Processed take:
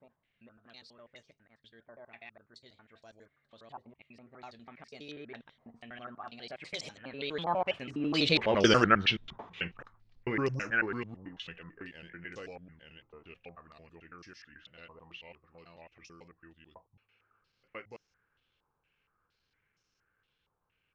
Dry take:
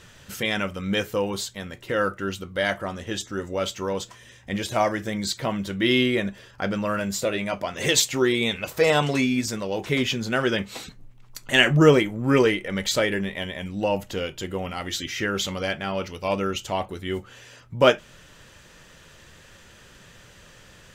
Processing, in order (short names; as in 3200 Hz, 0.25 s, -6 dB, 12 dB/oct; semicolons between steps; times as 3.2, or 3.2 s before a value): slices in reverse order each 96 ms, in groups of 5; Doppler pass-by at 8.63, 50 m/s, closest 9.6 m; stepped low-pass 4.3 Hz 970–5700 Hz; gain +1.5 dB